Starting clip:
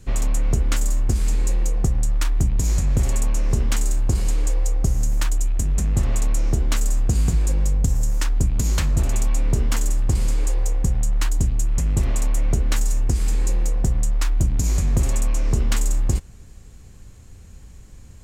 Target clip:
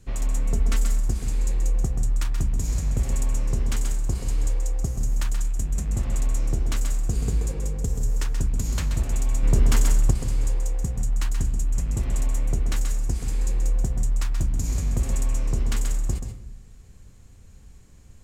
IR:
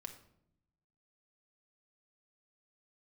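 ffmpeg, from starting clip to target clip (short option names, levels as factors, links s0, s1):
-filter_complex "[0:a]asettb=1/sr,asplit=3[s0][s1][s2];[s0]atrim=end=0.464[s3];[s1]atrim=start=0.46:end=0.99,asetpts=PTS-STARTPTS,afade=t=in:d=0.004:c=qsin,afade=t=out:st=0.526:d=0.004:c=qsin,aecho=1:1:4.5:0.59,atrim=end_sample=23373[s4];[s2]atrim=start=0.986[s5];[s3][s4]acrossfade=d=0.004:c1=hsin:c2=qsin[s6];[s6][s5]acrossfade=d=0.004:c1=qsin:c2=hsin,asettb=1/sr,asplit=3[s7][s8][s9];[s7]atrim=end=7.114[s10];[s8]atrim=start=7.11:end=8.33,asetpts=PTS-STARTPTS,afade=t=in:d=0.004:c=qsin,afade=t=out:st=1.216:d=0.004:c=qsin,equalizer=f=430:t=o:w=0.31:g=10.5[s11];[s9]atrim=start=8.326[s12];[s10][s11]acrossfade=d=0.004:c1=hsin:c2=qsin[s13];[s13][s12]acrossfade=d=0.004:c1=qsin:c2=hsin,asettb=1/sr,asplit=3[s14][s15][s16];[s14]atrim=end=9.434[s17];[s15]atrim=start=9.43:end=10.11,asetpts=PTS-STARTPTS,afade=t=in:d=0.004:c=qsin,afade=t=out:st=0.676:d=0.004:c=qsin,acontrast=79[s18];[s16]atrim=start=10.106[s19];[s17][s18]acrossfade=d=0.004:c1=hsin:c2=qsin[s20];[s20][s19]acrossfade=d=0.004:c1=qsin:c2=hsin,asplit=2[s21][s22];[1:a]atrim=start_sample=2205,adelay=130[s23];[s22][s23]afir=irnorm=-1:irlink=0,volume=0.794[s24];[s21][s24]amix=inputs=2:normalize=0,volume=0.473"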